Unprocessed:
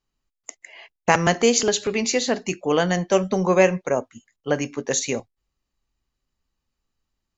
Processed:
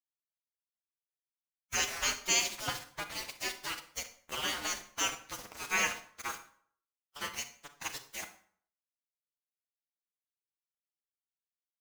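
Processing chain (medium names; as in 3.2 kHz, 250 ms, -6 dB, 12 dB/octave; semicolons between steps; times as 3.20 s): spectral gate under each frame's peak -20 dB weak; small samples zeroed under -34 dBFS; time stretch by phase-locked vocoder 1.6×; on a send: reverberation RT60 0.55 s, pre-delay 28 ms, DRR 9 dB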